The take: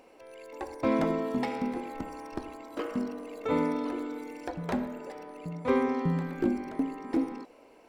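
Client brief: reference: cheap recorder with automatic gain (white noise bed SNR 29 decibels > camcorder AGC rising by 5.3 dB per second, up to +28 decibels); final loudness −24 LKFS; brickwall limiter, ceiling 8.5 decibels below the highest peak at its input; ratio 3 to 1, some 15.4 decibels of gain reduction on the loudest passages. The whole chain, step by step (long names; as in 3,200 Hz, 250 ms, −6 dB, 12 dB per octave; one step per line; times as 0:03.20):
downward compressor 3 to 1, threshold −44 dBFS
brickwall limiter −37 dBFS
white noise bed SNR 29 dB
camcorder AGC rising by 5.3 dB per second, up to +28 dB
level +22.5 dB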